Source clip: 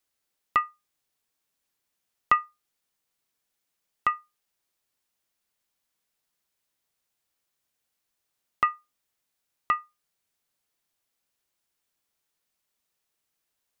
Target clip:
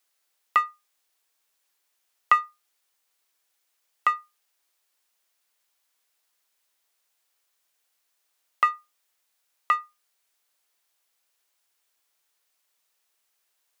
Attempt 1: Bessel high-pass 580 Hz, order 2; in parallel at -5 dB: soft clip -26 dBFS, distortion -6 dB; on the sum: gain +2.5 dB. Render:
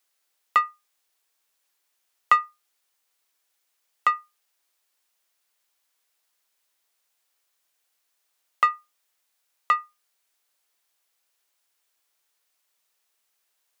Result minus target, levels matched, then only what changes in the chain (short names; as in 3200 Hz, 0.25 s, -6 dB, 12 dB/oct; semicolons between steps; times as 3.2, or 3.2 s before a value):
soft clip: distortion -5 dB
change: soft clip -37.5 dBFS, distortion -1 dB